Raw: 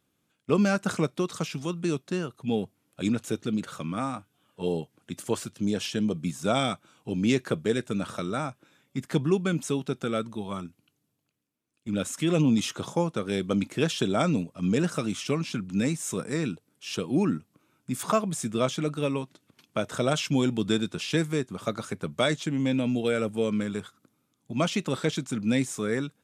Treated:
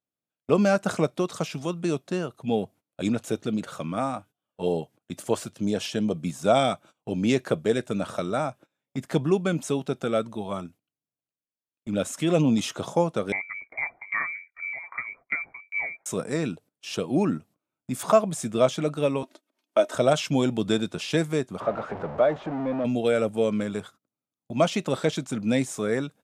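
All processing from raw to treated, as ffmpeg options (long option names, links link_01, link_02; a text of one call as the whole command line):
ffmpeg -i in.wav -filter_complex "[0:a]asettb=1/sr,asplit=3[link_01][link_02][link_03];[link_01]atrim=end=13.324[link_04];[link_02]atrim=start=13.32:end=16.06,asetpts=PTS-STARTPTS,afade=type=in:duration=0.004:curve=qsin,afade=type=out:start_time=2.736:duration=0.004:curve=qsin,lowpass=frequency=2100:width_type=q:width=0.5098,lowpass=frequency=2100:width_type=q:width=0.6013,lowpass=frequency=2100:width_type=q:width=0.9,lowpass=frequency=2100:width_type=q:width=2.563,afreqshift=-2500,aeval=exprs='val(0)*pow(10,-21*if(lt(mod(2.5*n/s,1),2*abs(2.5)/1000),1-mod(2.5*n/s,1)/(2*abs(2.5)/1000),(mod(2.5*n/s,1)-2*abs(2.5)/1000)/(1-2*abs(2.5)/1000))/20)':channel_layout=same[link_05];[link_03]atrim=start=16.056[link_06];[link_04][link_05]acrossfade=duration=0.004:curve1=hsin:curve2=qsin[link_07];[link_07][link_06]acrossfade=duration=0.004:curve1=qsin:curve2=hsin,asettb=1/sr,asplit=3[link_08][link_09][link_10];[link_08]atrim=end=19.234[link_11];[link_09]atrim=start=19.23:end=19.95,asetpts=PTS-STARTPTS,afade=type=in:duration=0.004:curve=qsin,afade=type=out:start_time=0.716:duration=0.004:curve=qsin,highpass=frequency=250:width=0.5412,highpass=frequency=250:width=1.3066,aecho=1:1:3.2:0.52,atrim=end_sample=31752,acompressor=mode=upward:threshold=-48dB:ratio=2.5:attack=3.2:release=140:knee=2.83:detection=peak[link_12];[link_10]atrim=start=19.946[link_13];[link_11][link_12]acrossfade=duration=0.004:curve1=hsin:curve2=qsin[link_14];[link_14][link_13]acrossfade=duration=0.004:curve1=qsin:curve2=hsin,asettb=1/sr,asplit=3[link_15][link_16][link_17];[link_15]atrim=end=21.604[link_18];[link_16]atrim=start=21.6:end=22.85,asetpts=PTS-STARTPTS,afade=type=in:duration=0.004:curve=qsin,afade=type=out:start_time=1.246:duration=0.004:curve=qsin,aeval=exprs='val(0)+0.5*0.0596*sgn(val(0))':channel_layout=same,lowpass=1100,lowshelf=frequency=360:gain=-12[link_19];[link_17]atrim=start=22.846[link_20];[link_18][link_19]acrossfade=duration=0.004:curve1=hsin:curve2=qsin[link_21];[link_21][link_20]acrossfade=duration=0.004:curve1=qsin:curve2=hsin,agate=range=-22dB:threshold=-49dB:ratio=16:detection=peak,equalizer=frequency=650:width_type=o:width=0.84:gain=8.5" out.wav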